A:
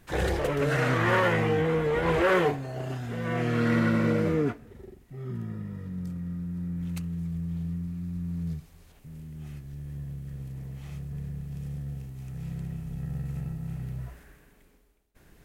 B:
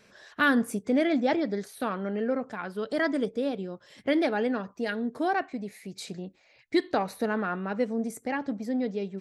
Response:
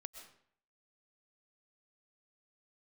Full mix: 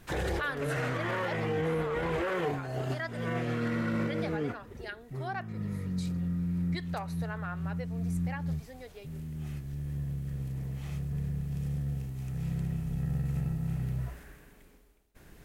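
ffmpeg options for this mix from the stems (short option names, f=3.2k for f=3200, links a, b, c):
-filter_complex "[0:a]volume=2.5dB[a];[1:a]highpass=700,volume=-7.5dB,asplit=2[b][c];[c]apad=whole_len=681258[d];[a][d]sidechaincompress=threshold=-43dB:ratio=12:attack=11:release=282[e];[e][b]amix=inputs=2:normalize=0,alimiter=limit=-23.5dB:level=0:latency=1:release=43"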